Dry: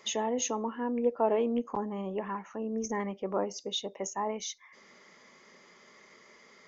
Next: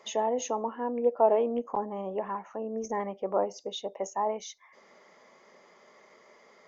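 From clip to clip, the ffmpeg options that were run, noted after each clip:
-af "equalizer=f=680:w=0.9:g=12,volume=0.531"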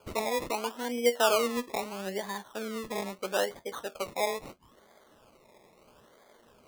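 -af "flanger=delay=9.4:depth=3.2:regen=60:speed=0.39:shape=sinusoidal,acrusher=samples=23:mix=1:aa=0.000001:lfo=1:lforange=13.8:lforate=0.76,volume=1.33"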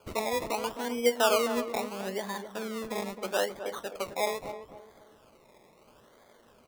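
-filter_complex "[0:a]asplit=2[s0][s1];[s1]adelay=262,lowpass=f=1100:p=1,volume=0.376,asplit=2[s2][s3];[s3]adelay=262,lowpass=f=1100:p=1,volume=0.37,asplit=2[s4][s5];[s5]adelay=262,lowpass=f=1100:p=1,volume=0.37,asplit=2[s6][s7];[s7]adelay=262,lowpass=f=1100:p=1,volume=0.37[s8];[s0][s2][s4][s6][s8]amix=inputs=5:normalize=0"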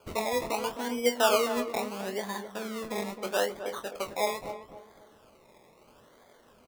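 -filter_complex "[0:a]asplit=2[s0][s1];[s1]adelay=24,volume=0.398[s2];[s0][s2]amix=inputs=2:normalize=0"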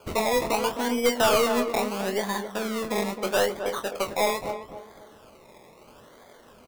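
-af "aeval=exprs='(tanh(14.1*val(0)+0.25)-tanh(0.25))/14.1':c=same,volume=2.37"

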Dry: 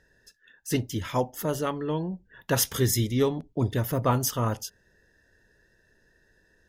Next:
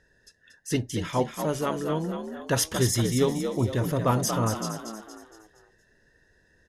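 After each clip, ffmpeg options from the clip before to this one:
-filter_complex "[0:a]lowpass=f=11000:w=0.5412,lowpass=f=11000:w=1.3066,asplit=2[s0][s1];[s1]asplit=5[s2][s3][s4][s5][s6];[s2]adelay=233,afreqshift=53,volume=0.447[s7];[s3]adelay=466,afreqshift=106,volume=0.202[s8];[s4]adelay=699,afreqshift=159,volume=0.0902[s9];[s5]adelay=932,afreqshift=212,volume=0.0407[s10];[s6]adelay=1165,afreqshift=265,volume=0.0184[s11];[s7][s8][s9][s10][s11]amix=inputs=5:normalize=0[s12];[s0][s12]amix=inputs=2:normalize=0"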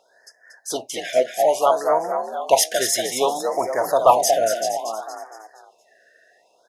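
-af "highpass=f=700:t=q:w=4.9,acontrast=82,afftfilt=real='re*(1-between(b*sr/1024,970*pow(3400/970,0.5+0.5*sin(2*PI*0.61*pts/sr))/1.41,970*pow(3400/970,0.5+0.5*sin(2*PI*0.61*pts/sr))*1.41))':imag='im*(1-between(b*sr/1024,970*pow(3400/970,0.5+0.5*sin(2*PI*0.61*pts/sr))/1.41,970*pow(3400/970,0.5+0.5*sin(2*PI*0.61*pts/sr))*1.41))':win_size=1024:overlap=0.75"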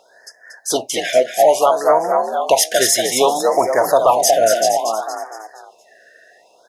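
-af "alimiter=limit=0.282:level=0:latency=1:release=254,volume=2.51"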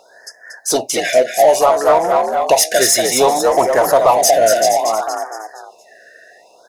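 -filter_complex "[0:a]bandreject=f=3200:w=5,asplit=2[s0][s1];[s1]volume=10,asoftclip=hard,volume=0.1,volume=0.708[s2];[s0][s2]amix=inputs=2:normalize=0"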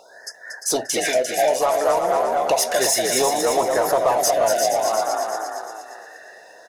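-af "acompressor=threshold=0.0708:ratio=2,aecho=1:1:349|698|1047|1396:0.473|0.132|0.0371|0.0104"

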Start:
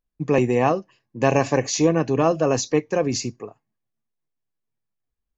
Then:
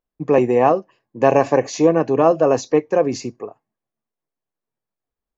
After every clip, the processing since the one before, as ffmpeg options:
-af "equalizer=f=630:w=0.35:g=13,volume=0.447"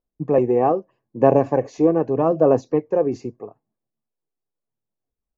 -af "aphaser=in_gain=1:out_gain=1:delay=2.6:decay=0.32:speed=0.8:type=sinusoidal,tiltshelf=f=1400:g=9,volume=0.335"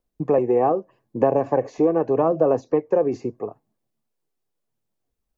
-filter_complex "[0:a]acrossover=split=380|1900[s0][s1][s2];[s0]acompressor=threshold=0.02:ratio=4[s3];[s1]acompressor=threshold=0.0631:ratio=4[s4];[s2]acompressor=threshold=0.00126:ratio=4[s5];[s3][s4][s5]amix=inputs=3:normalize=0,volume=2"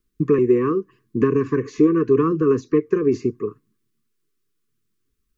-af "asuperstop=centerf=690:order=12:qfactor=1.1,volume=2"

